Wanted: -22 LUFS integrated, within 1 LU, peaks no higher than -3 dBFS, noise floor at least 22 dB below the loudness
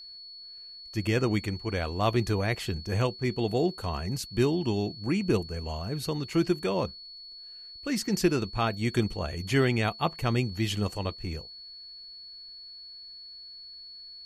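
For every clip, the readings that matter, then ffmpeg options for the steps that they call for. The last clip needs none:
steady tone 4.4 kHz; tone level -43 dBFS; loudness -29.0 LUFS; peak level -11.5 dBFS; loudness target -22.0 LUFS
-> -af "bandreject=f=4400:w=30"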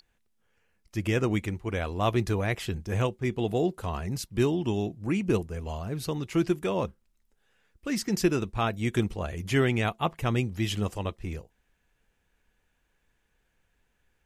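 steady tone not found; loudness -29.0 LUFS; peak level -11.5 dBFS; loudness target -22.0 LUFS
-> -af "volume=2.24"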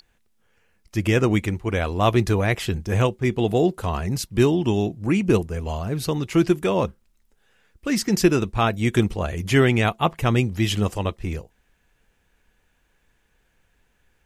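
loudness -22.0 LUFS; peak level -4.5 dBFS; noise floor -66 dBFS

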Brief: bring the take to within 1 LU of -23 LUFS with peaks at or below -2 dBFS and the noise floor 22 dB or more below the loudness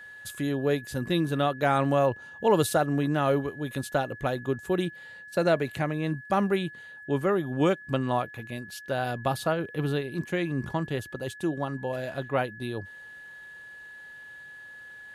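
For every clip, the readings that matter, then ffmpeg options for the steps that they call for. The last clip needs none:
steady tone 1.7 kHz; tone level -43 dBFS; loudness -28.5 LUFS; peak level -10.5 dBFS; loudness target -23.0 LUFS
-> -af "bandreject=f=1700:w=30"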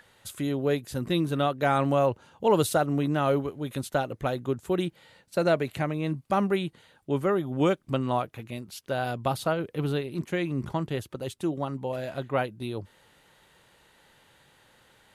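steady tone not found; loudness -28.5 LUFS; peak level -10.5 dBFS; loudness target -23.0 LUFS
-> -af "volume=1.88"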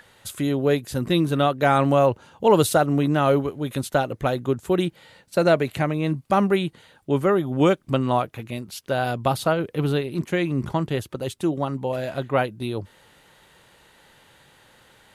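loudness -23.0 LUFS; peak level -5.0 dBFS; noise floor -58 dBFS

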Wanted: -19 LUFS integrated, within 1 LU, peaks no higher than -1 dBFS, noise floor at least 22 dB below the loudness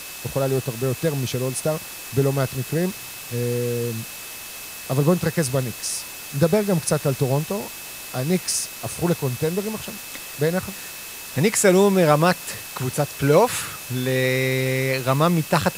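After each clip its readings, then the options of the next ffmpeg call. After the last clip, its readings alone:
steady tone 2.6 kHz; tone level -42 dBFS; noise floor -36 dBFS; noise floor target -45 dBFS; loudness -22.5 LUFS; peak level -2.0 dBFS; loudness target -19.0 LUFS
-> -af "bandreject=f=2600:w=30"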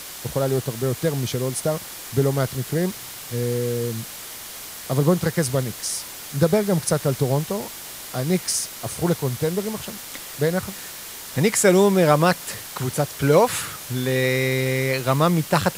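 steady tone not found; noise floor -37 dBFS; noise floor target -45 dBFS
-> -af "afftdn=nr=8:nf=-37"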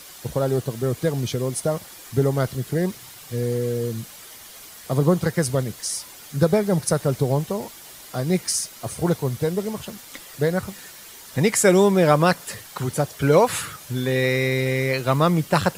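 noise floor -43 dBFS; noise floor target -45 dBFS
-> -af "afftdn=nr=6:nf=-43"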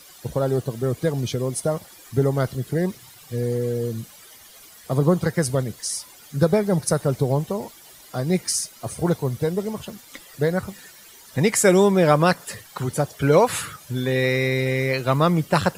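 noise floor -47 dBFS; loudness -22.5 LUFS; peak level -2.0 dBFS; loudness target -19.0 LUFS
-> -af "volume=1.5,alimiter=limit=0.891:level=0:latency=1"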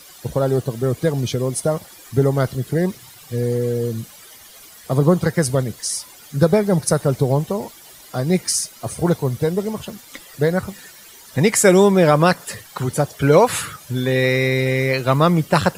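loudness -19.0 LUFS; peak level -1.0 dBFS; noise floor -44 dBFS

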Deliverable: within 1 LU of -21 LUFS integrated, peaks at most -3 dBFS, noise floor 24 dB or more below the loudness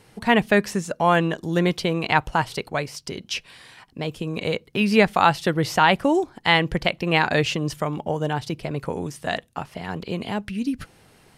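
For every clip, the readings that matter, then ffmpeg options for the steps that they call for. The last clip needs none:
loudness -23.0 LUFS; peak level -3.5 dBFS; loudness target -21.0 LUFS
-> -af "volume=1.26,alimiter=limit=0.708:level=0:latency=1"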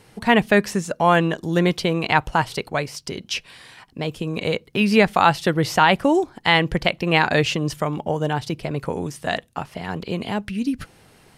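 loudness -21.0 LUFS; peak level -3.0 dBFS; noise floor -53 dBFS

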